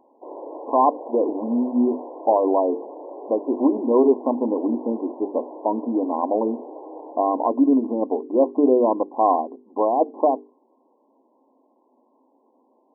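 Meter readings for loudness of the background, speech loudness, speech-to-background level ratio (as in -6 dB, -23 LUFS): -38.0 LUFS, -22.0 LUFS, 16.0 dB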